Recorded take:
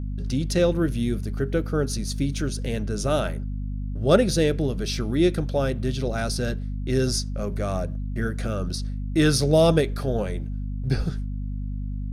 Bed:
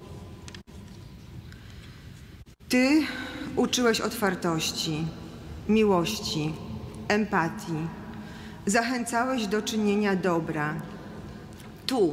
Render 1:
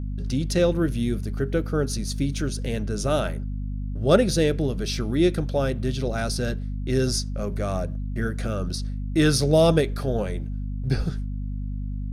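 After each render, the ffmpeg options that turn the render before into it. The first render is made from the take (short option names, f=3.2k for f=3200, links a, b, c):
-af anull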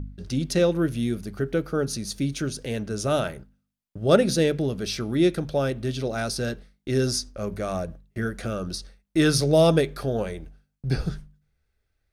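-af "bandreject=f=50:t=h:w=4,bandreject=f=100:t=h:w=4,bandreject=f=150:t=h:w=4,bandreject=f=200:t=h:w=4,bandreject=f=250:t=h:w=4"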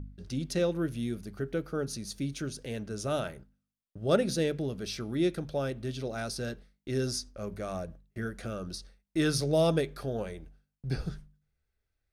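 -af "volume=-7.5dB"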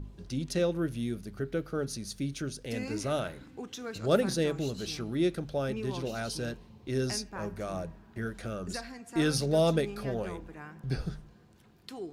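-filter_complex "[1:a]volume=-17dB[a];[0:a][a]amix=inputs=2:normalize=0"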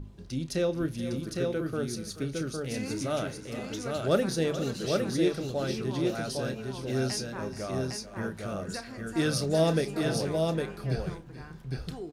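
-filter_complex "[0:a]asplit=2[a][b];[b]adelay=31,volume=-13dB[c];[a][c]amix=inputs=2:normalize=0,aecho=1:1:431|473|808:0.188|0.158|0.668"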